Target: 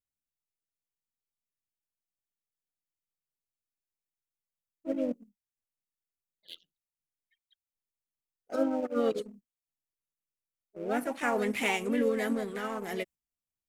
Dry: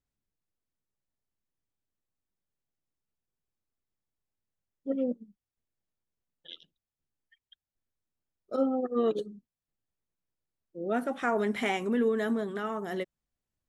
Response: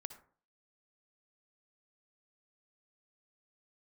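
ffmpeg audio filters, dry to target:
-filter_complex "[0:a]agate=range=0.398:threshold=0.00398:ratio=16:detection=peak,asplit=2[s0][s1];[s1]asetrate=52444,aresample=44100,atempo=0.840896,volume=0.501[s2];[s0][s2]amix=inputs=2:normalize=0,asplit=2[s3][s4];[s4]aeval=exprs='sgn(val(0))*max(abs(val(0))-0.00794,0)':c=same,volume=0.631[s5];[s3][s5]amix=inputs=2:normalize=0,aexciter=amount=1.3:drive=7.3:freq=2100,volume=0.501"

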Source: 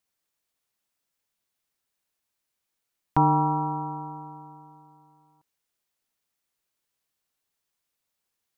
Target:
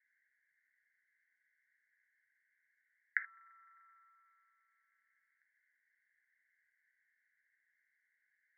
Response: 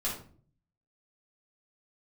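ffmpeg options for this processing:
-filter_complex "[0:a]acompressor=threshold=0.0282:ratio=3,asuperpass=centerf=1800:order=12:qfactor=2.8,asplit=2[s0][s1];[1:a]atrim=start_sample=2205,afade=t=out:st=0.13:d=0.01,atrim=end_sample=6174[s2];[s1][s2]afir=irnorm=-1:irlink=0,volume=0.316[s3];[s0][s3]amix=inputs=2:normalize=0,volume=5.62"

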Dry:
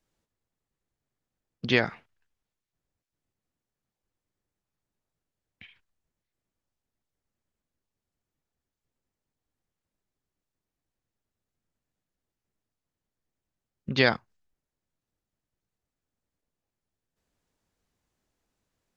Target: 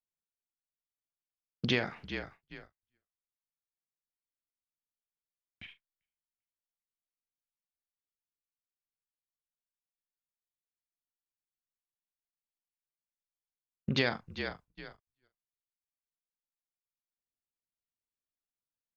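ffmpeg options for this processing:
-filter_complex "[0:a]asplit=4[s0][s1][s2][s3];[s1]adelay=395,afreqshift=-45,volume=0.133[s4];[s2]adelay=790,afreqshift=-90,volume=0.0398[s5];[s3]adelay=1185,afreqshift=-135,volume=0.012[s6];[s0][s4][s5][s6]amix=inputs=4:normalize=0,agate=range=0.0355:threshold=0.002:ratio=16:detection=peak,asplit=2[s7][s8];[s8]adelay=41,volume=0.237[s9];[s7][s9]amix=inputs=2:normalize=0,acompressor=threshold=0.0355:ratio=4,volume=1.26"

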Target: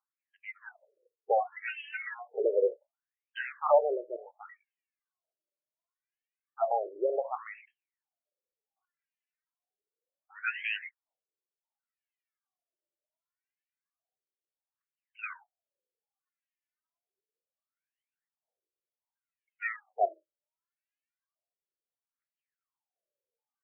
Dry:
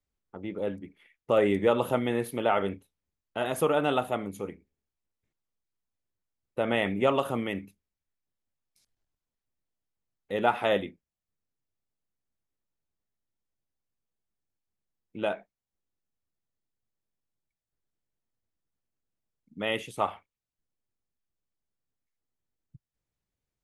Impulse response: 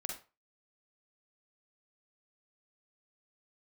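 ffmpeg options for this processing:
-af "aphaser=in_gain=1:out_gain=1:delay=3.5:decay=0.77:speed=0.27:type=triangular,afftfilt=real='re*between(b*sr/1024,430*pow(2300/430,0.5+0.5*sin(2*PI*0.68*pts/sr))/1.41,430*pow(2300/430,0.5+0.5*sin(2*PI*0.68*pts/sr))*1.41)':imag='im*between(b*sr/1024,430*pow(2300/430,0.5+0.5*sin(2*PI*0.68*pts/sr))/1.41,430*pow(2300/430,0.5+0.5*sin(2*PI*0.68*pts/sr))*1.41)':win_size=1024:overlap=0.75"

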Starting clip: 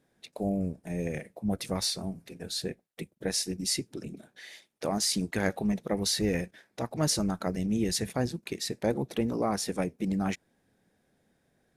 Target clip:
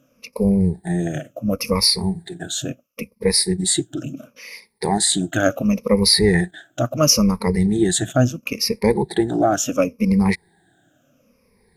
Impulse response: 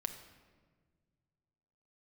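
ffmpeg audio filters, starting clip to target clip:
-af "afftfilt=real='re*pow(10,22/40*sin(2*PI*(0.88*log(max(b,1)*sr/1024/100)/log(2)-(-0.72)*(pts-256)/sr)))':imag='im*pow(10,22/40*sin(2*PI*(0.88*log(max(b,1)*sr/1024/100)/log(2)-(-0.72)*(pts-256)/sr)))':win_size=1024:overlap=0.75,volume=2.11"

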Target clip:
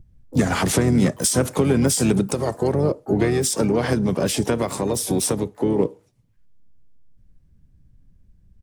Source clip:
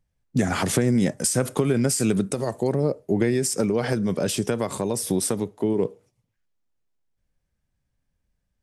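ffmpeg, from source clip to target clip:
-filter_complex "[0:a]acrossover=split=270[s0][s1];[s0]acompressor=mode=upward:threshold=0.0112:ratio=2.5[s2];[s2][s1]amix=inputs=2:normalize=0,asplit=4[s3][s4][s5][s6];[s4]asetrate=29433,aresample=44100,atempo=1.49831,volume=0.355[s7];[s5]asetrate=52444,aresample=44100,atempo=0.840896,volume=0.178[s8];[s6]asetrate=88200,aresample=44100,atempo=0.5,volume=0.141[s9];[s3][s7][s8][s9]amix=inputs=4:normalize=0,volume=1.33"

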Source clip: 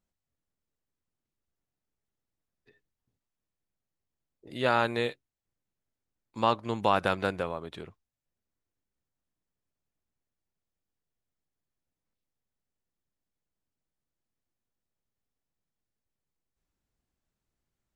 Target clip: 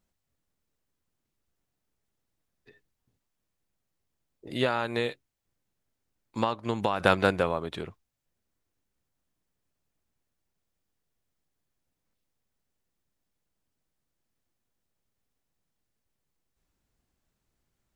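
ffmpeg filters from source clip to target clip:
-filter_complex "[0:a]asettb=1/sr,asplit=3[s0][s1][s2];[s0]atrim=end=4.634[s3];[s1]atrim=start=4.63:end=7,asetpts=PTS-STARTPTS,afade=t=in:d=0.004:c=qsin,afade=t=out:st=2.366:d=0.004:c=qsin,acompressor=threshold=0.0355:ratio=10[s4];[s2]atrim=start=6.996[s5];[s3][s4]acrossfade=d=0.004:c1=hsin:c2=qsin[s6];[s6][s5]acrossfade=d=0.004:c1=qsin:c2=hsin,volume=2"

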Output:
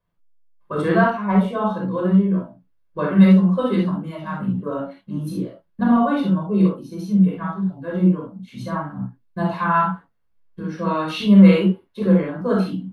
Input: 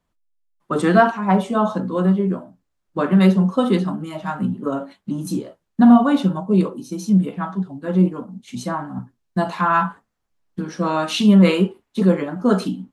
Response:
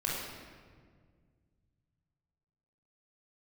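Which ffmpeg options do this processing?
-filter_complex "[0:a]equalizer=f=7200:w=1.5:g=-13.5[s0];[1:a]atrim=start_sample=2205,atrim=end_sample=3528[s1];[s0][s1]afir=irnorm=-1:irlink=0,volume=0.531"

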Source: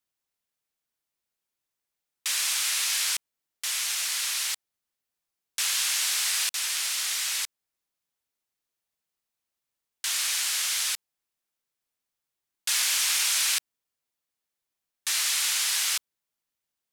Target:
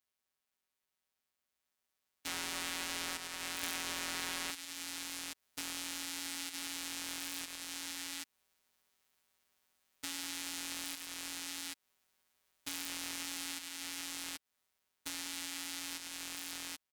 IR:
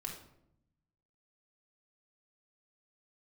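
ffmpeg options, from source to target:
-filter_complex "[0:a]bass=f=250:g=-13,treble=f=4000:g=-4,dynaudnorm=f=360:g=17:m=3.76,aecho=1:1:103|187|780:0.299|0.158|0.224,acompressor=threshold=0.0112:ratio=10,aeval=exprs='(tanh(63.1*val(0)+0.55)-tanh(0.55))/63.1':c=same,asettb=1/sr,asplit=3[s0][s1][s2];[s0]atrim=end=2.274[s3];[s1]atrim=start=2.27:end=4.51,asetpts=PTS-STARTPTS,afade=t=in:d=0.004:c=qsin,afade=t=out:st=2.236:d=0.004:c=qsin,equalizer=f=610:w=0.4:g=13[s4];[s2]atrim=start=4.506[s5];[s3][s4]acrossfade=d=0.004:c1=hsin:c2=qsin[s6];[s6][s5]acrossfade=d=0.004:c1=qsin:c2=hsin,afftfilt=real='hypot(re,im)*cos(PI*b)':imag='0':win_size=1024:overlap=0.75,aeval=exprs='val(0)*sgn(sin(2*PI*280*n/s))':c=same,volume=1.78"

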